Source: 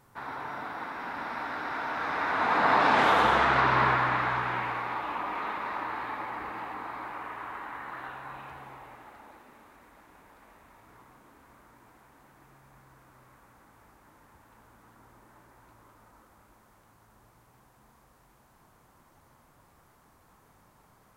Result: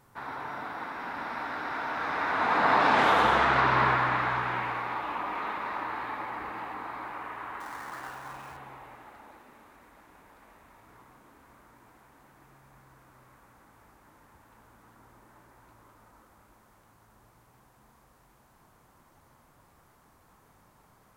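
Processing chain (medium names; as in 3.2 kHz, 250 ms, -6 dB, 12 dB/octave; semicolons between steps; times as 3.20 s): 7.60–8.57 s: dead-time distortion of 0.059 ms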